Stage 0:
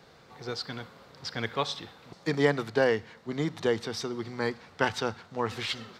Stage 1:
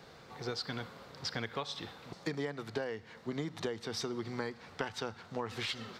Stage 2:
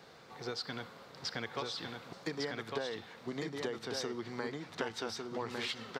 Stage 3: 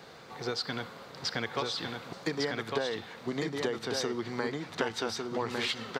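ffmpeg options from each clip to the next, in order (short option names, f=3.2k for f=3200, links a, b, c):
-af "acompressor=threshold=-34dB:ratio=16,volume=1dB"
-filter_complex "[0:a]lowshelf=f=98:g=-11.5,asplit=2[a][b];[b]aecho=0:1:1153:0.668[c];[a][c]amix=inputs=2:normalize=0,volume=-1dB"
-af "bandreject=f=5.4k:w=27,volume=6dB"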